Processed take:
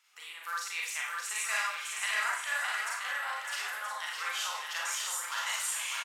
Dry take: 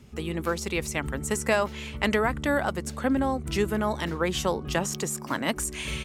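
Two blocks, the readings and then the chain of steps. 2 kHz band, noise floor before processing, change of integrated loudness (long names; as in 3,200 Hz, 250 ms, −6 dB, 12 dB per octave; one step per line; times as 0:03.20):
−0.5 dB, −39 dBFS, −5.0 dB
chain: high-pass filter 1,100 Hz 24 dB per octave
on a send: bouncing-ball delay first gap 610 ms, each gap 0.6×, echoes 5
on the sum: four-comb reverb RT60 0.52 s, combs from 32 ms, DRR −3.5 dB
level −7.5 dB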